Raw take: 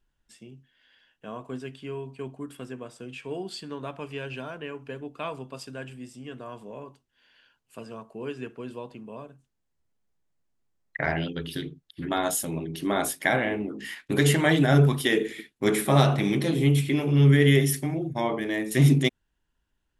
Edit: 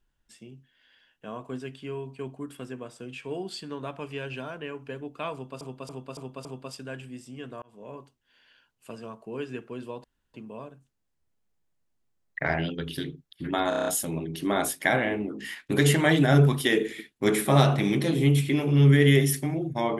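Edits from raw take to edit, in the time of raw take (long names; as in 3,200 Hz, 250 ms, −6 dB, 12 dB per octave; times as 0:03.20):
0:05.33–0:05.61: repeat, 5 plays
0:06.50–0:06.83: fade in linear
0:08.92: splice in room tone 0.30 s
0:12.27: stutter 0.03 s, 7 plays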